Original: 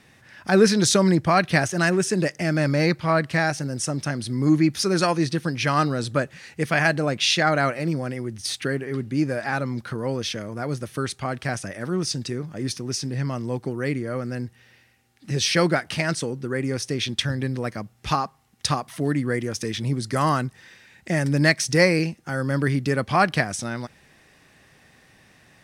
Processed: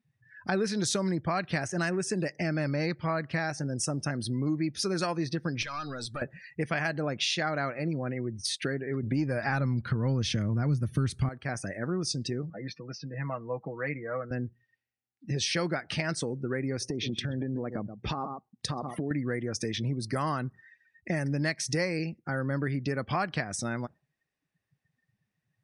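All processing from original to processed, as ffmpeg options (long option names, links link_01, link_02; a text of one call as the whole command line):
ffmpeg -i in.wav -filter_complex "[0:a]asettb=1/sr,asplit=3[link_01][link_02][link_03];[link_01]atrim=end=5.624[link_04];[link_02]atrim=start=5.62:end=6.22,asetpts=PTS-STARTPTS,afade=type=in:duration=0.004:curve=qsin,afade=type=out:start_time=0.596:duration=0.004:curve=qsin,tiltshelf=frequency=1100:gain=-7.5,acompressor=threshold=-28dB:ratio=4:attack=3.2:release=140:knee=1:detection=peak,aeval=exprs='clip(val(0),-1,0.0224)':channel_layout=same[link_05];[link_03]atrim=start=6.216[link_06];[link_04][link_05]acrossfade=duration=0.004:curve1=hsin:curve2=qsin[link_07];[link_07][link_06]acrossfade=duration=0.004:curve1=qsin:curve2=hsin,asettb=1/sr,asplit=3[link_08][link_09][link_10];[link_08]atrim=end=9.034[link_11];[link_09]atrim=start=9.03:end=11.29,asetpts=PTS-STARTPTS,afade=type=in:duration=0.004:curve=qsin,afade=type=out:start_time=2.256:duration=0.004:curve=qsin,acontrast=83,asubboost=boost=11.5:cutoff=200[link_12];[link_10]atrim=start=11.286[link_13];[link_11][link_12]acrossfade=duration=0.004:curve1=hsin:curve2=qsin[link_14];[link_14][link_13]acrossfade=duration=0.004:curve1=qsin:curve2=hsin,asettb=1/sr,asplit=3[link_15][link_16][link_17];[link_15]atrim=end=12.504[link_18];[link_16]atrim=start=12.5:end=14.31,asetpts=PTS-STARTPTS,afade=type=in:duration=0.004:curve=qsin,afade=type=out:start_time=1.806:duration=0.004:curve=qsin,highpass=230,lowpass=2600,equalizer=frequency=340:width_type=o:width=0.66:gain=-13,aecho=1:1:6.2:0.61,atrim=end_sample=79821[link_19];[link_17]atrim=start=14.306[link_20];[link_18][link_19]acrossfade=duration=0.004:curve1=hsin:curve2=qsin[link_21];[link_21][link_20]acrossfade=duration=0.004:curve1=qsin:curve2=hsin,asettb=1/sr,asplit=3[link_22][link_23][link_24];[link_22]atrim=end=16.814[link_25];[link_23]atrim=start=16.81:end=19.11,asetpts=PTS-STARTPTS,afade=type=in:duration=0.004:curve=qsin,afade=type=out:start_time=2.296:duration=0.004:curve=qsin,equalizer=frequency=310:width_type=o:width=2.8:gain=9,aecho=1:1:127:0.15,atrim=end_sample=101430,acompressor=threshold=-25dB:ratio=8:attack=3.2:release=140:knee=1:detection=peak[link_26];[link_24]atrim=start=19.106[link_27];[link_25][link_26]acrossfade=duration=0.004:curve1=hsin:curve2=qsin[link_28];[link_28][link_27]acrossfade=duration=0.004:curve1=qsin:curve2=hsin,afftdn=noise_reduction=31:noise_floor=-40,acompressor=threshold=-26dB:ratio=4,volume=-1.5dB" out.wav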